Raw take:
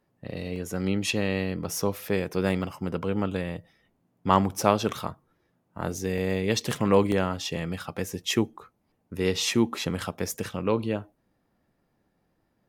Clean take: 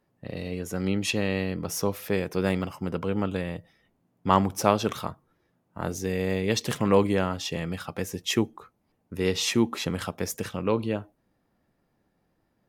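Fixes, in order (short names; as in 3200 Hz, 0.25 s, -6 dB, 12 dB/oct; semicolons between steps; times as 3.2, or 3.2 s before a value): interpolate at 0.56/6.18/7.12, 1.2 ms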